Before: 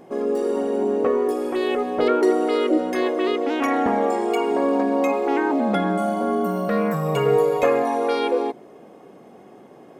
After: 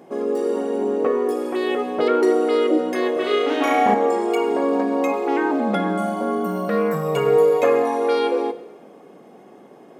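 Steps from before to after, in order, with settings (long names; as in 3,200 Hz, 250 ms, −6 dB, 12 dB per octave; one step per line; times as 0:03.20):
high-pass filter 140 Hz 12 dB per octave
0:03.13–0:03.94: flutter between parallel walls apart 5.8 metres, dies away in 0.96 s
coupled-rooms reverb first 0.98 s, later 3.1 s, from −27 dB, DRR 11 dB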